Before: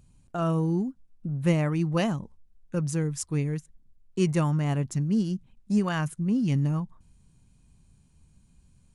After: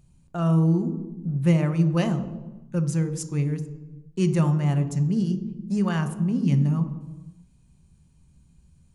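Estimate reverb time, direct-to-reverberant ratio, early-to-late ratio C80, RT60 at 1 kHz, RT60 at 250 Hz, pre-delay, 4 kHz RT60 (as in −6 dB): 1.2 s, 8.0 dB, 13.5 dB, 1.1 s, can't be measured, 3 ms, 0.80 s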